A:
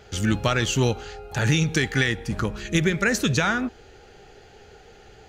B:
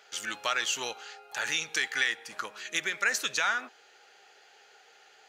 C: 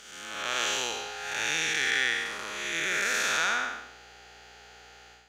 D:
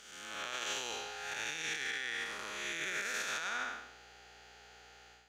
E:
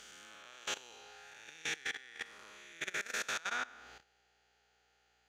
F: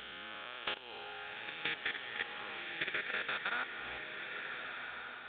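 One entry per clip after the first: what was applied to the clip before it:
high-pass filter 910 Hz 12 dB per octave; level −3 dB
spectrum smeared in time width 330 ms; mains hum 60 Hz, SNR 32 dB; automatic gain control gain up to 8 dB
brickwall limiter −21.5 dBFS, peak gain reduction 9 dB; level −6 dB
output level in coarse steps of 19 dB; level +2 dB
downward compressor, threshold −43 dBFS, peak gain reduction 9.5 dB; downsampling to 8,000 Hz; slow-attack reverb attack 1,480 ms, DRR 4 dB; level +9 dB

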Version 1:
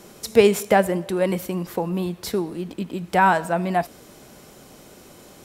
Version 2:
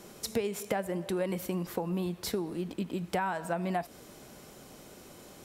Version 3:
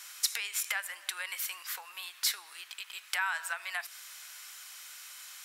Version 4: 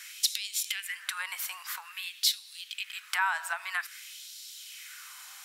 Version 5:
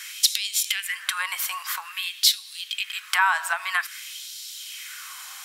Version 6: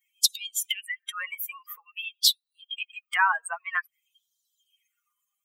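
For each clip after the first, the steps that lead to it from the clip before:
downward compressor 16 to 1, threshold −23 dBFS, peak gain reduction 15.5 dB; level −4.5 dB
high-pass filter 1,400 Hz 24 dB per octave; level +8.5 dB
auto-filter high-pass sine 0.51 Hz 760–4,000 Hz
hollow resonant body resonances 1,100/3,200 Hz, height 10 dB, ringing for 100 ms; level +7.5 dB
spectral dynamics exaggerated over time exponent 3; level +1.5 dB

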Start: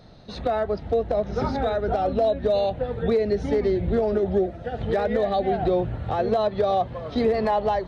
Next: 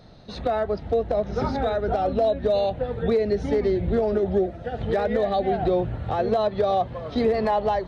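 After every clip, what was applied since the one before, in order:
no processing that can be heard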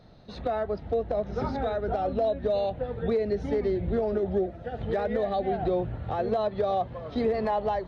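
high-shelf EQ 4,700 Hz −6.5 dB
level −4.5 dB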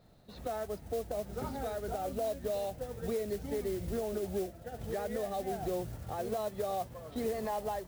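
noise that follows the level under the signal 17 dB
level −8.5 dB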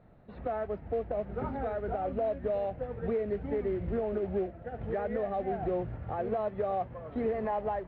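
low-pass filter 2,300 Hz 24 dB per octave
level +3.5 dB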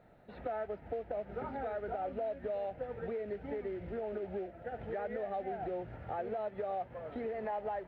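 notch filter 1,100 Hz, Q 5.4
downward compressor 4 to 1, threshold −35 dBFS, peak gain reduction 7.5 dB
low-shelf EQ 300 Hz −11.5 dB
level +3 dB

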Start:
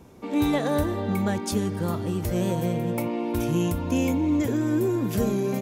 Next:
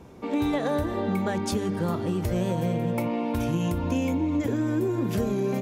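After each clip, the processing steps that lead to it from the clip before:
high-shelf EQ 6,400 Hz −9 dB
mains-hum notches 50/100/150/200/250/300/350 Hz
downward compressor, threshold −25 dBFS, peak gain reduction 6 dB
level +3 dB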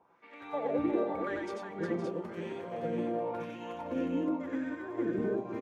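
auto-filter band-pass sine 0.92 Hz 320–2,000 Hz
on a send: multi-tap delay 90/96/359/514/567 ms −3.5/−4/−6/−9/−4.5 dB
on the sum: expander for the loud parts 1.5 to 1, over −42 dBFS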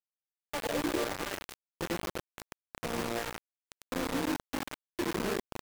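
bit reduction 5 bits
level −2.5 dB

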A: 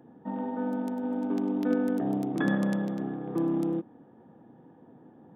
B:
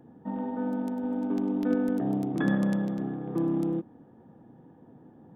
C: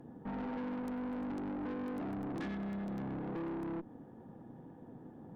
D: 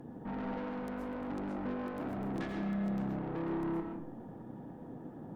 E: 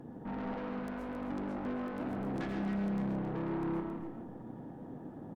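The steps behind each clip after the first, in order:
low-shelf EQ 120 Hz +11.5 dB; level −1.5 dB
downward compressor 6 to 1, threshold −30 dBFS, peak gain reduction 10 dB; tube saturation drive 40 dB, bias 0.5; every ending faded ahead of time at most 390 dB per second; level +3 dB
brickwall limiter −38.5 dBFS, peak gain reduction 4 dB; on a send at −3 dB: convolution reverb RT60 0.60 s, pre-delay 90 ms; on the sum: level +4 dB
on a send: single-tap delay 270 ms −9 dB; on the sum: highs frequency-modulated by the lows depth 0.24 ms

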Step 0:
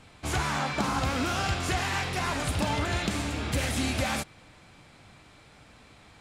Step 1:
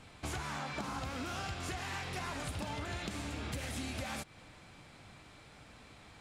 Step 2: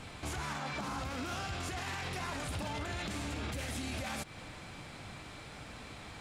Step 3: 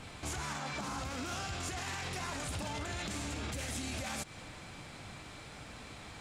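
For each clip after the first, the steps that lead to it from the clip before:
downward compressor 6 to 1, threshold −35 dBFS, peak gain reduction 11.5 dB; level −2 dB
brickwall limiter −38 dBFS, peak gain reduction 11 dB; level +8 dB
dynamic equaliser 7,100 Hz, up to +6 dB, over −60 dBFS, Q 1.2; level −1 dB

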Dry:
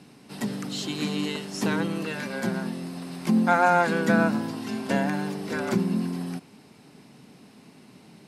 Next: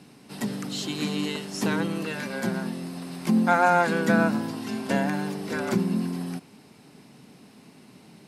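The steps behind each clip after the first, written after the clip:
high-shelf EQ 11,000 Hz +4 dB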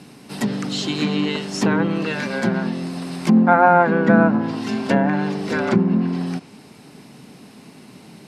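treble cut that deepens with the level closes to 1,500 Hz, closed at −20 dBFS
level +7.5 dB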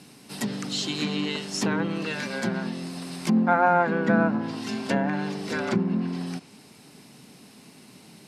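high-shelf EQ 3,000 Hz +8 dB
level −7.5 dB

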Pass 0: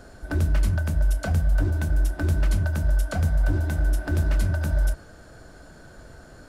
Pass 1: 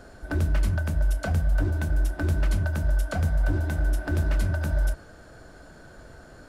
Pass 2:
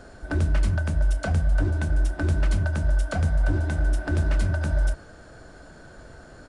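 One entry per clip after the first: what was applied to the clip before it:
bass and treble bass −2 dB, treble −3 dB
downsampling to 22,050 Hz; level +1.5 dB

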